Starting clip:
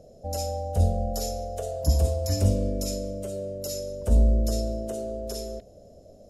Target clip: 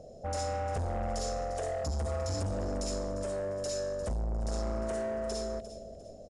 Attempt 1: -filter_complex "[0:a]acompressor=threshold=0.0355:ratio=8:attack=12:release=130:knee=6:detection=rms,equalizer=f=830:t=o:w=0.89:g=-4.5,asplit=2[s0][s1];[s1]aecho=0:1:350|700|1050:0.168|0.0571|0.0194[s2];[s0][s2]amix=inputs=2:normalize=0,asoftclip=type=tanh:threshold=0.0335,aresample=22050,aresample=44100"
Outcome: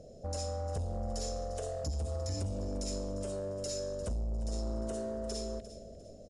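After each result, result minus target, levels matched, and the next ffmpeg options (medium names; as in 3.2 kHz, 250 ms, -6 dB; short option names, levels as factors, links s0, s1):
compression: peak gain reduction +5.5 dB; 1 kHz band -5.0 dB
-filter_complex "[0:a]acompressor=threshold=0.075:ratio=8:attack=12:release=130:knee=6:detection=rms,equalizer=f=830:t=o:w=0.89:g=-4.5,asplit=2[s0][s1];[s1]aecho=0:1:350|700|1050:0.168|0.0571|0.0194[s2];[s0][s2]amix=inputs=2:normalize=0,asoftclip=type=tanh:threshold=0.0335,aresample=22050,aresample=44100"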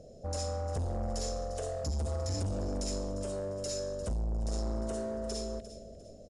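1 kHz band -4.5 dB
-filter_complex "[0:a]acompressor=threshold=0.075:ratio=8:attack=12:release=130:knee=6:detection=rms,equalizer=f=830:t=o:w=0.89:g=4.5,asplit=2[s0][s1];[s1]aecho=0:1:350|700|1050:0.168|0.0571|0.0194[s2];[s0][s2]amix=inputs=2:normalize=0,asoftclip=type=tanh:threshold=0.0335,aresample=22050,aresample=44100"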